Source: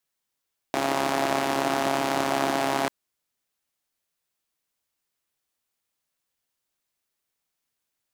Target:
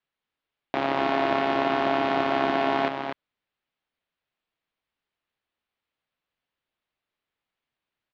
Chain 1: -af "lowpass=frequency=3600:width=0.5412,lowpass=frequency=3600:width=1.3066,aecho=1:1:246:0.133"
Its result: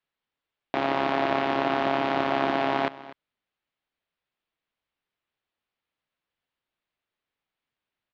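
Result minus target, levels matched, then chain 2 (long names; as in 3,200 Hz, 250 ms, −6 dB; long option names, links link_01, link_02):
echo-to-direct −11.5 dB
-af "lowpass=frequency=3600:width=0.5412,lowpass=frequency=3600:width=1.3066,aecho=1:1:246:0.501"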